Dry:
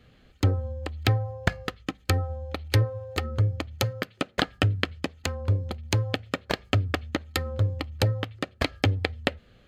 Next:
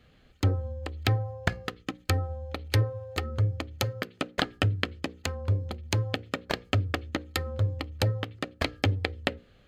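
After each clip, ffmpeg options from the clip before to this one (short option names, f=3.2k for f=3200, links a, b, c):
-af "bandreject=f=60:t=h:w=6,bandreject=f=120:t=h:w=6,bandreject=f=180:t=h:w=6,bandreject=f=240:t=h:w=6,bandreject=f=300:t=h:w=6,bandreject=f=360:t=h:w=6,bandreject=f=420:t=h:w=6,bandreject=f=480:t=h:w=6,bandreject=f=540:t=h:w=6,volume=-2dB"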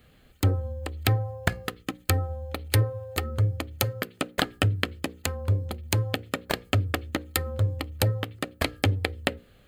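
-af "aexciter=amount=2.6:drive=8.2:freq=8k,volume=2dB"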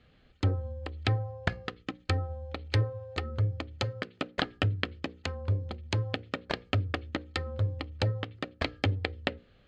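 -af "lowpass=f=5.3k:w=0.5412,lowpass=f=5.3k:w=1.3066,volume=-4.5dB"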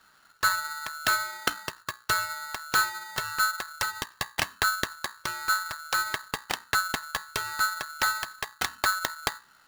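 -af "aeval=exprs='val(0)*sgn(sin(2*PI*1400*n/s))':c=same,volume=2dB"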